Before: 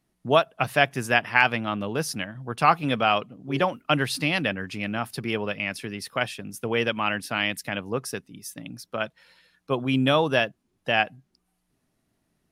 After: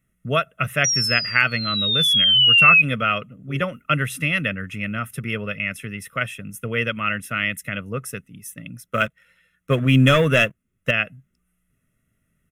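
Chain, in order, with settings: comb 1.5 ms, depth 59%; 0.84–2.82 s: painted sound fall 2.5–5.8 kHz -14 dBFS; 8.84–10.91 s: waveshaping leveller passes 2; static phaser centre 1.9 kHz, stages 4; trim +3.5 dB

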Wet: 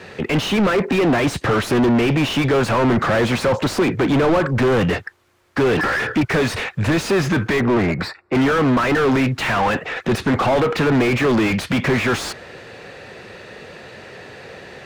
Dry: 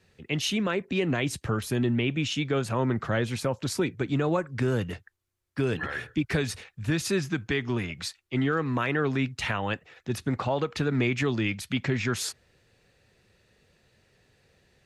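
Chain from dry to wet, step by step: 7.60–8.35 s: boxcar filter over 14 samples; overdrive pedal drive 35 dB, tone 1 kHz, clips at -15 dBFS; trim +6.5 dB

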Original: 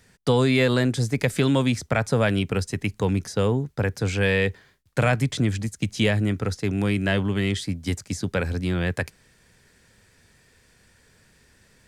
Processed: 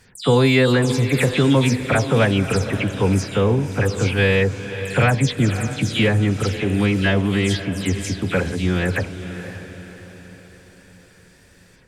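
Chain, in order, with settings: delay that grows with frequency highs early, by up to 115 ms; de-hum 84.51 Hz, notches 13; on a send: echo that smears into a reverb 547 ms, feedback 47%, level -11 dB; on the sum: trim +5 dB

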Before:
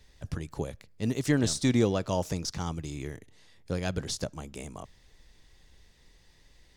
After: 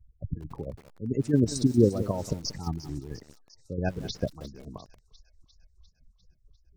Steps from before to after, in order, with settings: level-controlled noise filter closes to 1.1 kHz, open at -25.5 dBFS; in parallel at -9.5 dB: hysteresis with a dead band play -26 dBFS; on the sum: square tremolo 4.5 Hz, depth 65%, duty 50%; spectral gate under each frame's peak -15 dB strong; on a send: feedback echo behind a high-pass 350 ms, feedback 65%, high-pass 2.9 kHz, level -14 dB; on the sum: bit-crushed delay 183 ms, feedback 35%, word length 7-bit, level -14 dB; trim +3 dB

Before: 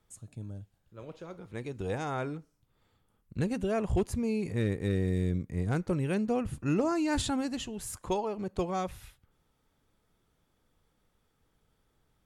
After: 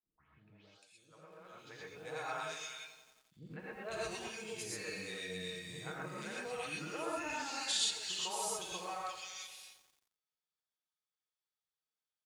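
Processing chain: tape start-up on the opening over 0.33 s; low-pass 4.6 kHz 12 dB/octave; gate with hold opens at -59 dBFS; differentiator; comb 6.4 ms, depth 35%; three bands offset in time lows, mids, highs 150/500 ms, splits 330/2000 Hz; gated-style reverb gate 150 ms rising, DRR -4.5 dB; bit-crushed delay 88 ms, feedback 80%, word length 11-bit, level -14 dB; trim +7 dB

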